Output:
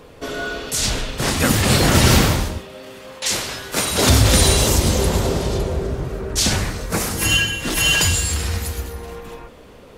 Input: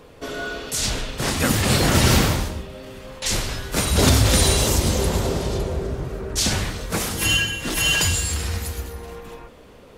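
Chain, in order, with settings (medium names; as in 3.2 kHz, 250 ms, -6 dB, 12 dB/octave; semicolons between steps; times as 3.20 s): 2.58–4.09 s: high-pass 330 Hz 6 dB/octave; 6.56–7.32 s: peaking EQ 3.3 kHz -5.5 dB 0.58 oct; trim +3 dB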